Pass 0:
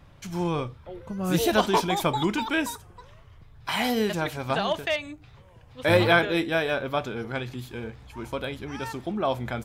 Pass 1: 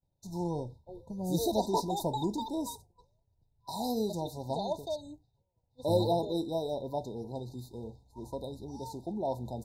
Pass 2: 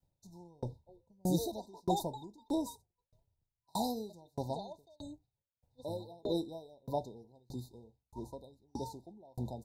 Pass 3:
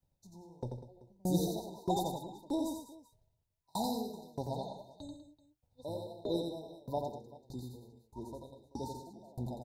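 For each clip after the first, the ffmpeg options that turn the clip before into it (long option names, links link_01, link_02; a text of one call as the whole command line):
ffmpeg -i in.wav -af "agate=range=-33dB:threshold=-38dB:ratio=3:detection=peak,afftfilt=real='re*(1-between(b*sr/4096,1000,3600))':imag='im*(1-between(b*sr/4096,1000,3600))':win_size=4096:overlap=0.75,volume=-6.5dB" out.wav
ffmpeg -i in.wav -af "aeval=exprs='val(0)*pow(10,-37*if(lt(mod(1.6*n/s,1),2*abs(1.6)/1000),1-mod(1.6*n/s,1)/(2*abs(1.6)/1000),(mod(1.6*n/s,1)-2*abs(1.6)/1000)/(1-2*abs(1.6)/1000))/20)':channel_layout=same,volume=5dB" out.wav
ffmpeg -i in.wav -af "aecho=1:1:88|153|197|384:0.596|0.141|0.237|0.1,volume=-1dB" out.wav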